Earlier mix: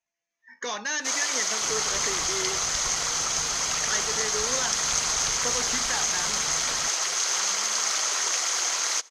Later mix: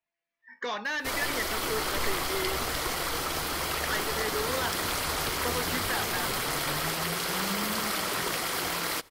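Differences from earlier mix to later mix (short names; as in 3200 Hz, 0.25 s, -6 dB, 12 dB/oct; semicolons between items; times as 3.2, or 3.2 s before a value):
first sound: remove HPF 640 Hz 12 dB/oct; master: remove synth low-pass 6400 Hz, resonance Q 11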